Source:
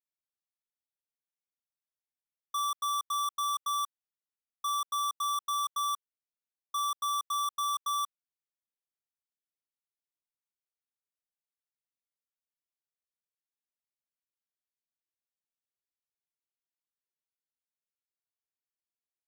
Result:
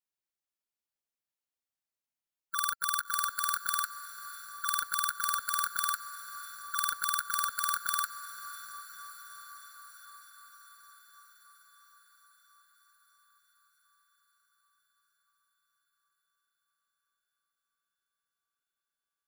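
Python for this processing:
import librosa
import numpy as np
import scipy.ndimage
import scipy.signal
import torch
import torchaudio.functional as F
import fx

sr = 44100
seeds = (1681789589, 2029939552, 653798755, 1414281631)

y = fx.formant_shift(x, sr, semitones=4)
y = fx.echo_diffused(y, sr, ms=602, feedback_pct=70, wet_db=-13.5)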